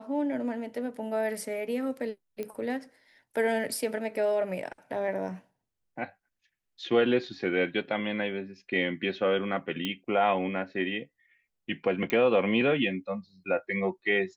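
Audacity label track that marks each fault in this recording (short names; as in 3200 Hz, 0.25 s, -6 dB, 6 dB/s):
2.430000	2.430000	pop -23 dBFS
9.850000	9.850000	pop -17 dBFS
12.100000	12.100000	pop -16 dBFS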